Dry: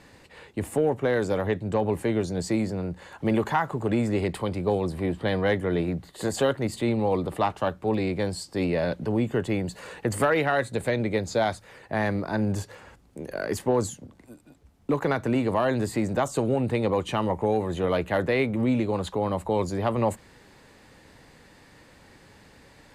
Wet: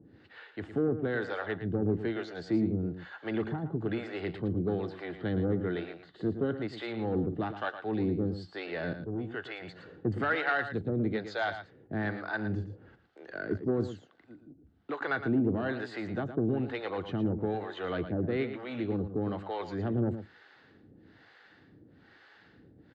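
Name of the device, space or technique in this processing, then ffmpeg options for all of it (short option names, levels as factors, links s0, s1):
guitar amplifier with harmonic tremolo: -filter_complex "[0:a]acrossover=split=530[s0][s1];[s0]aeval=exprs='val(0)*(1-1/2+1/2*cos(2*PI*1.1*n/s))':c=same[s2];[s1]aeval=exprs='val(0)*(1-1/2-1/2*cos(2*PI*1.1*n/s))':c=same[s3];[s2][s3]amix=inputs=2:normalize=0,asoftclip=type=tanh:threshold=0.1,highpass=95,equalizer=f=97:t=q:w=4:g=3,equalizer=f=320:t=q:w=4:g=5,equalizer=f=560:t=q:w=4:g=-7,equalizer=f=980:t=q:w=4:g=-9,equalizer=f=1500:t=q:w=4:g=6,equalizer=f=2400:t=q:w=4:g=-7,lowpass=f=3900:w=0.5412,lowpass=f=3900:w=1.3066,asettb=1/sr,asplit=3[s4][s5][s6];[s4]atrim=end=8.994[s7];[s5]atrim=start=8.99:end=9.62,asetpts=PTS-STARTPTS,afade=t=in:d=0.004:c=qsin,afade=t=out:st=0.626:d=0.004:c=qsin,equalizer=f=200:w=0.57:g=-10.5[s8];[s6]atrim=start=9.616[s9];[s7][s8]acrossfade=d=0.004:c1=hsin:c2=qsin[s10];[s10][s9]acrossfade=d=0.004:c1=qsin:c2=hsin,aecho=1:1:113:0.299"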